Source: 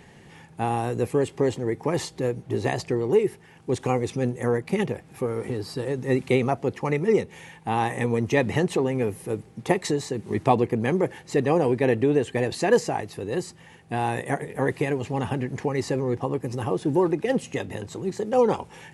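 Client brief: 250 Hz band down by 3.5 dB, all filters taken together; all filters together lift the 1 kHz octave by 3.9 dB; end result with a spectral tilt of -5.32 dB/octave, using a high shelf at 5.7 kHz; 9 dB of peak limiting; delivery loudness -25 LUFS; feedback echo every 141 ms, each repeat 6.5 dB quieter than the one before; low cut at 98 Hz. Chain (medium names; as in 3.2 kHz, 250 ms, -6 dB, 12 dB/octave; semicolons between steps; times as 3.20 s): high-pass 98 Hz; peaking EQ 250 Hz -5 dB; peaking EQ 1 kHz +5.5 dB; treble shelf 5.7 kHz +5 dB; peak limiter -12.5 dBFS; feedback delay 141 ms, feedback 47%, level -6.5 dB; trim +1 dB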